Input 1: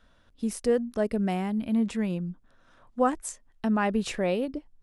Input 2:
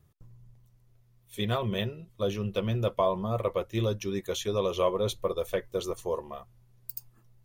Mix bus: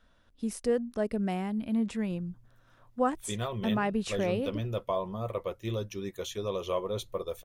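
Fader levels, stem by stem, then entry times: -3.5, -5.0 dB; 0.00, 1.90 s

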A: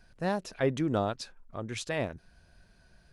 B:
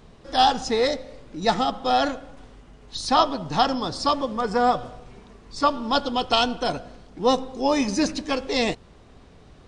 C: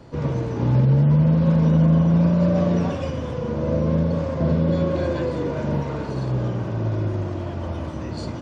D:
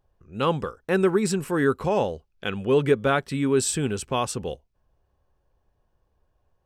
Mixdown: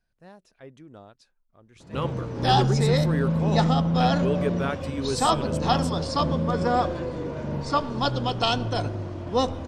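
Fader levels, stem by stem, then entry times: -18.0, -3.5, -6.5, -7.5 dB; 0.00, 2.10, 1.80, 1.55 s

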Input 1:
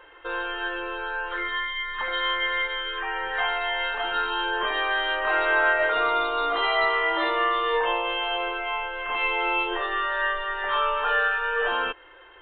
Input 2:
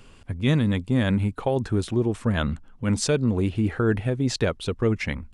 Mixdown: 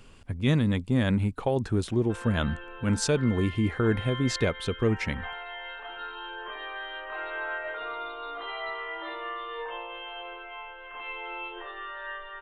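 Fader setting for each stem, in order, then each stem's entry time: -12.5, -2.5 dB; 1.85, 0.00 s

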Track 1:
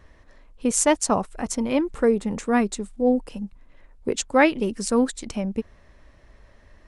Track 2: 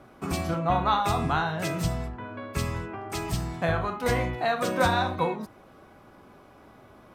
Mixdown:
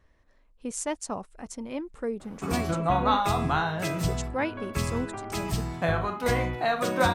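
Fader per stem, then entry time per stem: -12.0, 0.0 dB; 0.00, 2.20 s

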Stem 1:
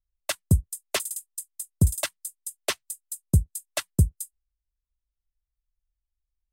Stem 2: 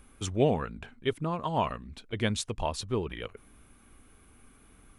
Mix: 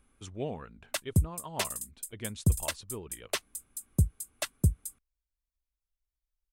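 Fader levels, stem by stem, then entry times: -5.0, -11.0 dB; 0.65, 0.00 s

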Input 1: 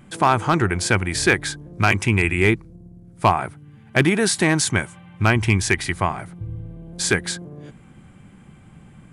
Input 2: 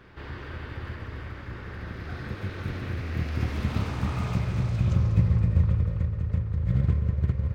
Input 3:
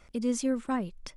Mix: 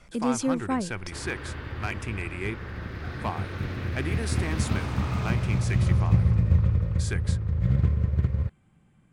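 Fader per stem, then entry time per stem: -15.5, +1.0, +2.5 dB; 0.00, 0.95, 0.00 s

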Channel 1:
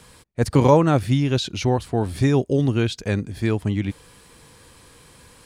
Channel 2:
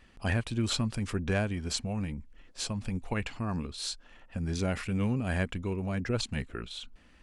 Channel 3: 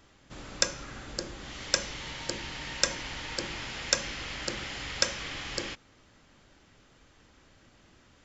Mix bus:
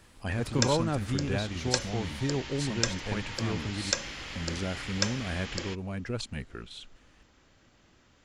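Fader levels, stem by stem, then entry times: -12.5, -3.5, -2.5 dB; 0.00, 0.00, 0.00 s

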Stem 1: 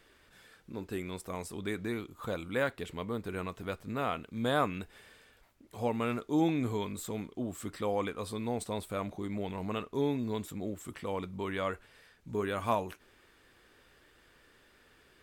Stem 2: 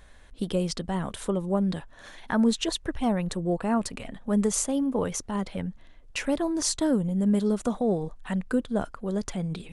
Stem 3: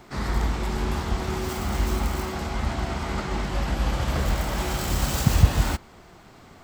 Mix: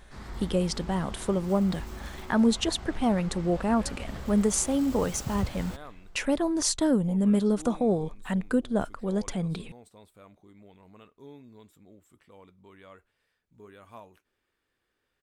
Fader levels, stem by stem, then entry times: -17.0, +0.5, -15.0 dB; 1.25, 0.00, 0.00 s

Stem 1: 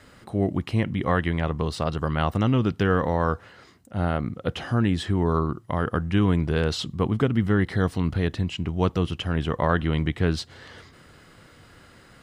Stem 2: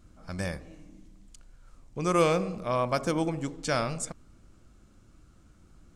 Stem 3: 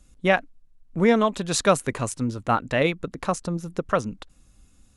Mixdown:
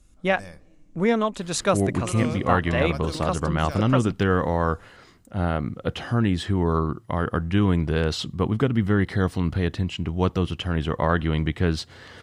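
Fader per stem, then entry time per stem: +0.5, -9.0, -2.5 dB; 1.40, 0.00, 0.00 s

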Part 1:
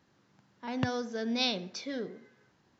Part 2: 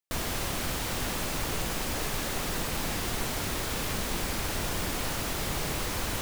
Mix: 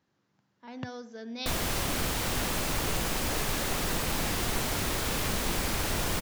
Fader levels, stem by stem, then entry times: -7.5, +1.5 dB; 0.00, 1.35 s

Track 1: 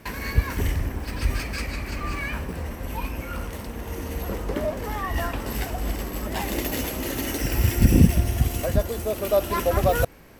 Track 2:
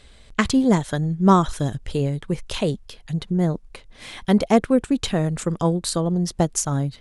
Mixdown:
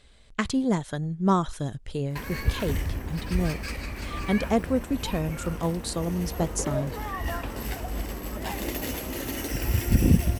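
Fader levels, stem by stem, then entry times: -4.0, -7.0 dB; 2.10, 0.00 s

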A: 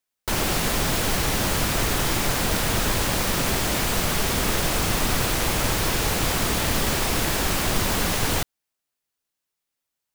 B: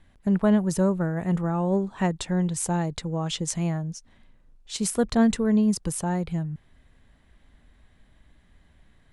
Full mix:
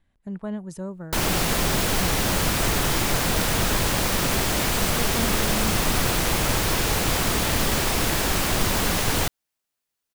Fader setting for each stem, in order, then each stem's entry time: +0.5, -11.0 dB; 0.85, 0.00 s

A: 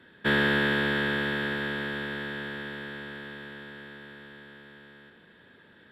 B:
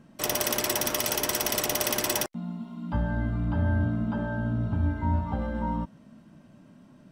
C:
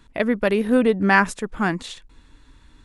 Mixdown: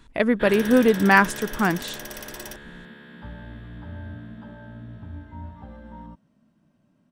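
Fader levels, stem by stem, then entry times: -9.0, -12.0, +0.5 dB; 0.15, 0.30, 0.00 s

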